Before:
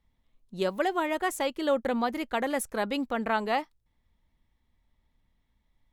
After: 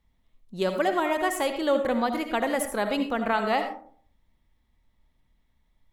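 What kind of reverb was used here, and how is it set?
comb and all-pass reverb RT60 0.52 s, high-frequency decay 0.4×, pre-delay 35 ms, DRR 6.5 dB
level +2 dB

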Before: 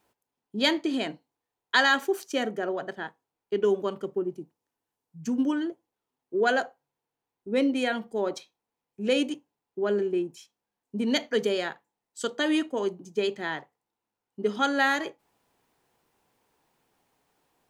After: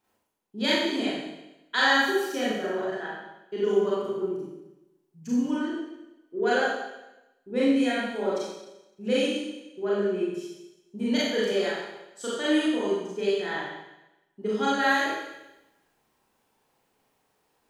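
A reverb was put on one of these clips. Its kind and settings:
four-comb reverb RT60 0.97 s, combs from 29 ms, DRR −8 dB
level −7.5 dB

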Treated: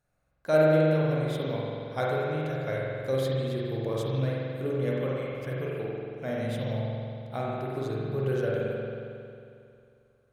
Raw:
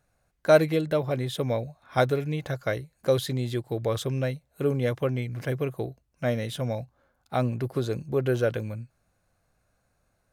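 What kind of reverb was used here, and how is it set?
spring reverb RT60 2.5 s, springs 45 ms, chirp 40 ms, DRR −5.5 dB
level −9 dB

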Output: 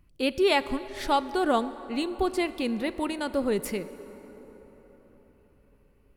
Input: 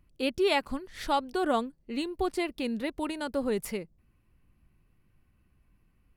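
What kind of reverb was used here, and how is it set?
dense smooth reverb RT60 4.9 s, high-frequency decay 0.5×, DRR 13.5 dB
level +3 dB

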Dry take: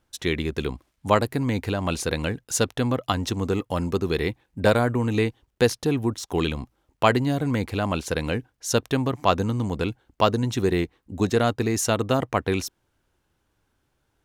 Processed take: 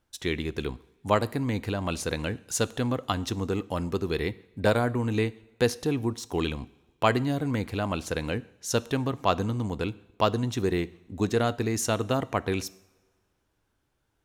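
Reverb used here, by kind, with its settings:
coupled-rooms reverb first 0.68 s, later 2.1 s, from −18 dB, DRR 17 dB
level −4 dB

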